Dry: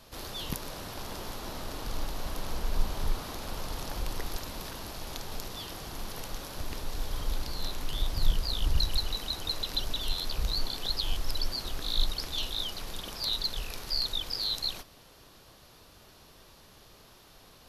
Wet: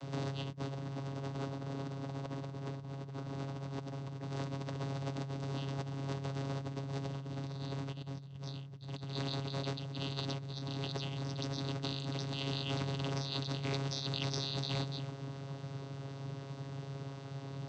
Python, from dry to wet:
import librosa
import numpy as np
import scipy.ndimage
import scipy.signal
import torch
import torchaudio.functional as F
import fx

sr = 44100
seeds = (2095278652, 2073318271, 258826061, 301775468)

y = np.minimum(x, 2.0 * 10.0 ** (-20.0 / 20.0) - x)
y = fx.low_shelf(y, sr, hz=200.0, db=8.5)
y = y + 10.0 ** (-14.0 / 20.0) * np.pad(y, (int(289 * sr / 1000.0), 0))[:len(y)]
y = fx.vocoder(y, sr, bands=16, carrier='saw', carrier_hz=137.0)
y = fx.over_compress(y, sr, threshold_db=-45.0, ratio=-1.0)
y = F.gain(torch.from_numpy(y), 5.0).numpy()